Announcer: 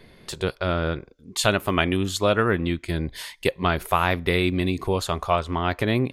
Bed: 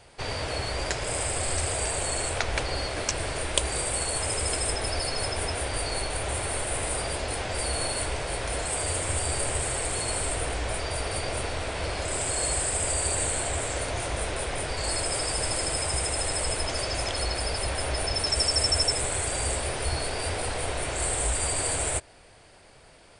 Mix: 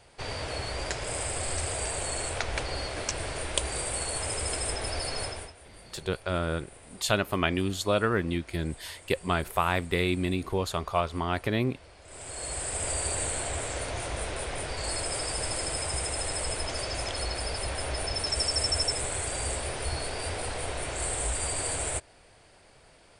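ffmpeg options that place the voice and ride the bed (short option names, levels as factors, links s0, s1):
-filter_complex "[0:a]adelay=5650,volume=0.562[s0];[1:a]volume=5.62,afade=t=out:st=5.2:d=0.33:silence=0.11885,afade=t=in:st=12.03:d=0.87:silence=0.11885[s1];[s0][s1]amix=inputs=2:normalize=0"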